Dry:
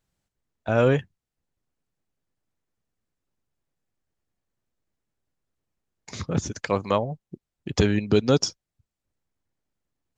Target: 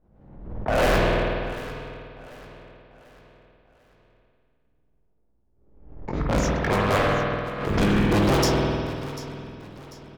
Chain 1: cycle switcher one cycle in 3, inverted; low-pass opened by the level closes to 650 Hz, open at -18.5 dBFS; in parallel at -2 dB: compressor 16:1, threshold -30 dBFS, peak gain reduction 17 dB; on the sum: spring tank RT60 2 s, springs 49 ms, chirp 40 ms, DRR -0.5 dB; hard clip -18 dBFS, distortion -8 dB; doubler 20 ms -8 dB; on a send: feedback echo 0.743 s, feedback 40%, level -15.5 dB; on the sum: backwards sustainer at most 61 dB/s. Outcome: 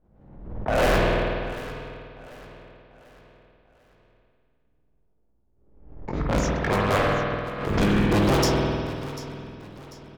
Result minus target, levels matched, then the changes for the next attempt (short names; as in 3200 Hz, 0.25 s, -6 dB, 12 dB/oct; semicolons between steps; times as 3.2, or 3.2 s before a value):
compressor: peak gain reduction +5.5 dB
change: compressor 16:1, threshold -24 dBFS, peak gain reduction 11.5 dB